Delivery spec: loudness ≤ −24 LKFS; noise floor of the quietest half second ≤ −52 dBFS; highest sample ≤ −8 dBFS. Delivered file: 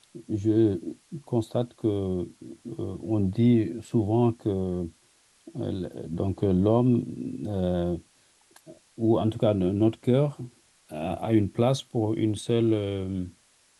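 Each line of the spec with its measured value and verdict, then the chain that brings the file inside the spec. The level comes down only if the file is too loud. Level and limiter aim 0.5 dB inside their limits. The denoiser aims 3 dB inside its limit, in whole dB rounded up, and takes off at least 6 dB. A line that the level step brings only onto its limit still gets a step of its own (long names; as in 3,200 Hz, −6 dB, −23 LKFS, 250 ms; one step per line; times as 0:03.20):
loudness −26.5 LKFS: in spec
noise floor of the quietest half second −62 dBFS: in spec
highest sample −10.0 dBFS: in spec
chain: no processing needed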